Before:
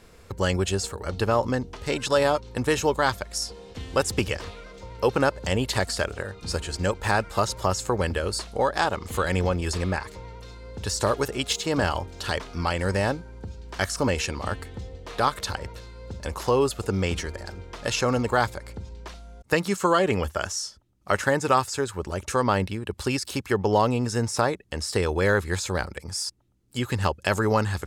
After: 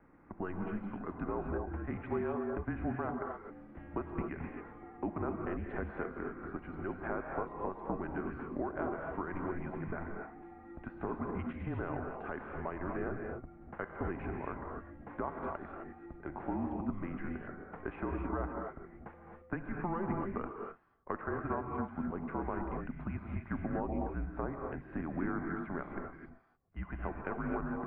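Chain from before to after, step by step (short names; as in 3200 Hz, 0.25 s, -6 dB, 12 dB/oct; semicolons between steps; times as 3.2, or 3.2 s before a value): compressor 4:1, threshold -27 dBFS, peak gain reduction 10.5 dB; air absorption 350 m; non-linear reverb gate 0.29 s rising, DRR 1.5 dB; mistuned SSB -180 Hz 200–2200 Hz; gain -6 dB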